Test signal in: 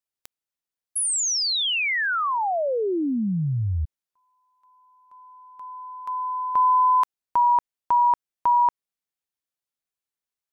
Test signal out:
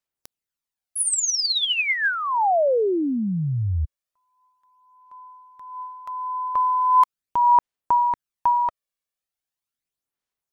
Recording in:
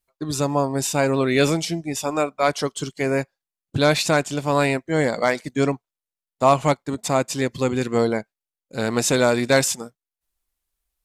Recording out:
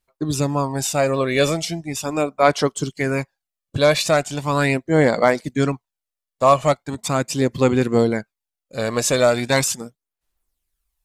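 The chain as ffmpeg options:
-af "aphaser=in_gain=1:out_gain=1:delay=1.8:decay=0.46:speed=0.39:type=sinusoidal"

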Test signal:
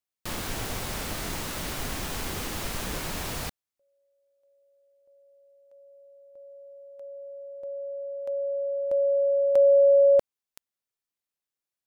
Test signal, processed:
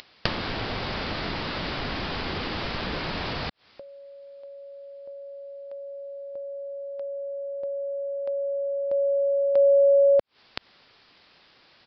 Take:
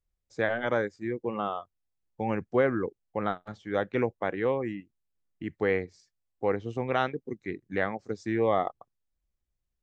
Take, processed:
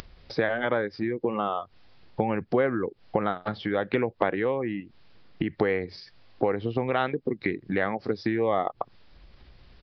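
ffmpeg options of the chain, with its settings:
-af "lowshelf=f=62:g=-8,acompressor=mode=upward:threshold=0.0355:ratio=2.5:attack=97:release=77:knee=2.83:detection=peak,aresample=11025,asoftclip=type=hard:threshold=0.447,aresample=44100"

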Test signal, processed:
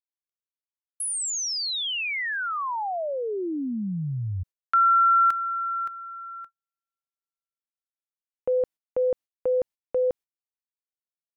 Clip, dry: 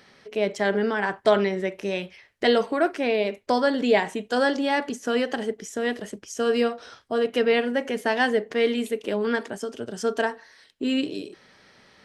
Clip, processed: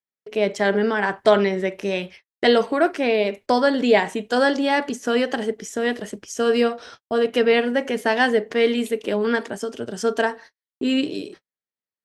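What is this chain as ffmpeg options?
-af "agate=range=0.00316:threshold=0.00631:ratio=16:detection=peak,volume=1.5"

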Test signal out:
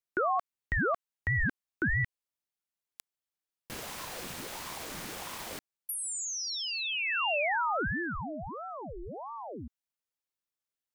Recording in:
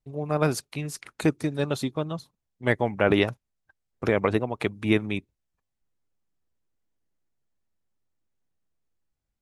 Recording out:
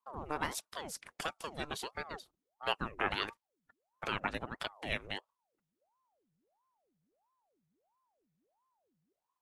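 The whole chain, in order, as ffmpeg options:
-filter_complex "[0:a]acrossover=split=790|2000[s0][s1][s2];[s0]acompressor=threshold=0.0141:ratio=4[s3];[s1]acompressor=threshold=0.0794:ratio=4[s4];[s2]acompressor=threshold=0.0316:ratio=4[s5];[s3][s4][s5]amix=inputs=3:normalize=0,aeval=exprs='val(0)*sin(2*PI*600*n/s+600*0.75/1.5*sin(2*PI*1.5*n/s))':c=same,volume=0.708"

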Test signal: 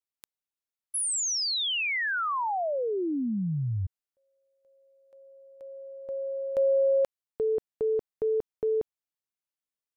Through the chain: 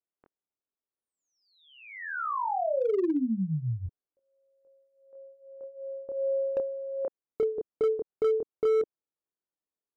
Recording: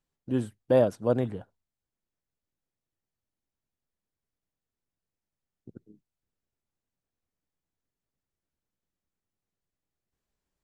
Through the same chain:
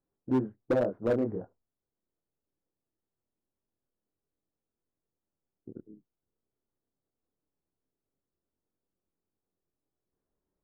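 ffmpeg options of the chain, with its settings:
-af "lowpass=f=1500:w=0.5412,lowpass=f=1500:w=1.3066,equalizer=f=370:w=0.86:g=9,acompressor=threshold=0.0891:ratio=5:attack=72:release=532:knee=6:detection=peak,flanger=delay=22.5:depth=7.8:speed=0.22,asoftclip=type=hard:threshold=0.0891"

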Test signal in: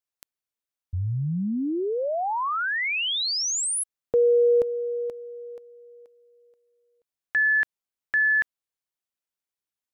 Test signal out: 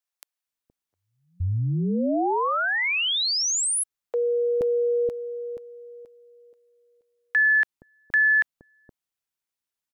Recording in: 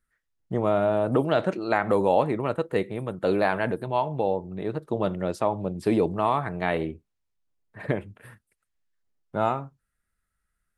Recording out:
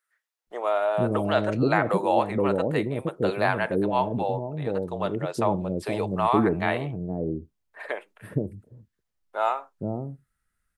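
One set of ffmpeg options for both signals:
-filter_complex "[0:a]acrossover=split=500[s0][s1];[s0]adelay=470[s2];[s2][s1]amix=inputs=2:normalize=0,volume=1.26"

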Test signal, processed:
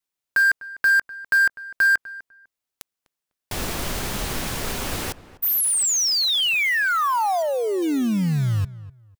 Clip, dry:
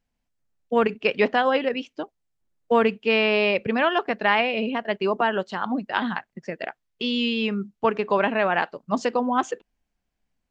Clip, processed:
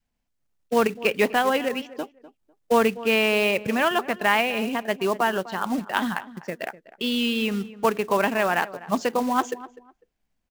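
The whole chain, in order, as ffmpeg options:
-filter_complex "[0:a]adynamicequalizer=threshold=0.0282:dfrequency=500:dqfactor=1.8:tfrequency=500:tqfactor=1.8:attack=5:release=100:ratio=0.375:range=1.5:mode=cutabove:tftype=bell,acrusher=bits=4:mode=log:mix=0:aa=0.000001,asplit=2[s0][s1];[s1]adelay=250,lowpass=f=1700:p=1,volume=0.15,asplit=2[s2][s3];[s3]adelay=250,lowpass=f=1700:p=1,volume=0.22[s4];[s0][s2][s4]amix=inputs=3:normalize=0"

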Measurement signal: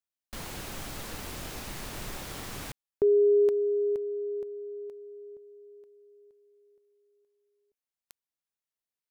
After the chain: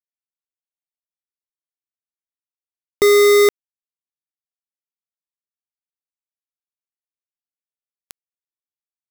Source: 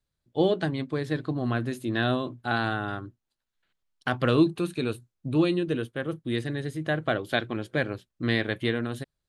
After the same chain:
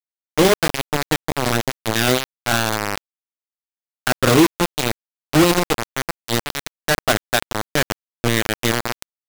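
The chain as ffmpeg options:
-af "asoftclip=type=tanh:threshold=0.126,acrusher=bits=3:mix=0:aa=0.000001,volume=2.66"

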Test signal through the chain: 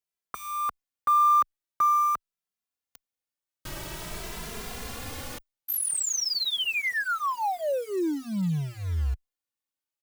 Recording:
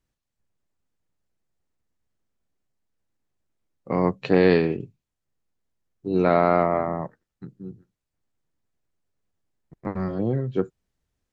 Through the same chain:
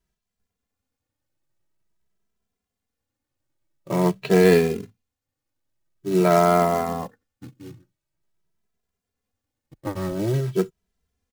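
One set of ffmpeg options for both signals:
-filter_complex "[0:a]acrusher=bits=4:mode=log:mix=0:aa=0.000001,asplit=2[s0][s1];[s1]adelay=2.6,afreqshift=0.47[s2];[s0][s2]amix=inputs=2:normalize=1,volume=1.58"

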